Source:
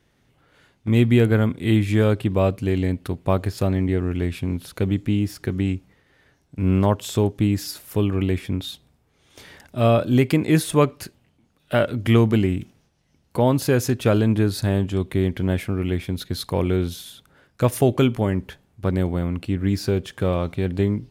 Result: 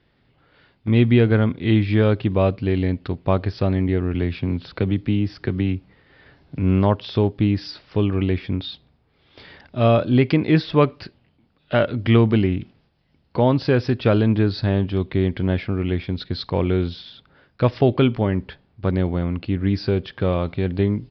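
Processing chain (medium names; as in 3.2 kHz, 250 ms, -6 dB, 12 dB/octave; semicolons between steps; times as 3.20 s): resampled via 11.025 kHz; 4.14–6.59 s: three bands compressed up and down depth 40%; trim +1 dB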